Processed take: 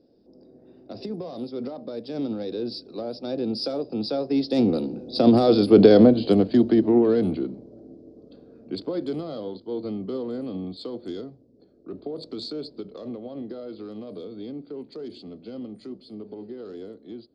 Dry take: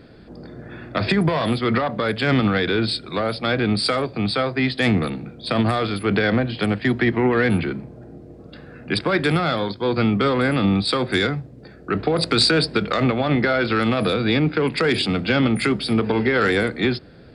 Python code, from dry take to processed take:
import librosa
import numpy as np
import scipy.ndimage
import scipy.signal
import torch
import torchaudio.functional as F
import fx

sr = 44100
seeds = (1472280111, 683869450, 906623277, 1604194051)

y = fx.doppler_pass(x, sr, speed_mps=20, closest_m=9.6, pass_at_s=5.79)
y = fx.curve_eq(y, sr, hz=(140.0, 260.0, 540.0, 1900.0, 5100.0, 8600.0), db=(0, 13, 12, -14, 10, -7))
y = y * 10.0 ** (-2.5 / 20.0)